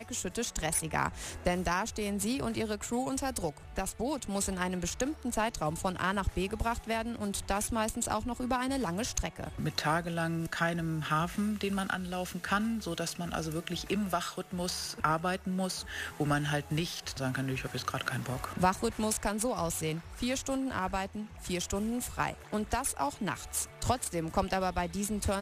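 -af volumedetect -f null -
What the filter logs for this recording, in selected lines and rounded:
mean_volume: -33.1 dB
max_volume: -13.1 dB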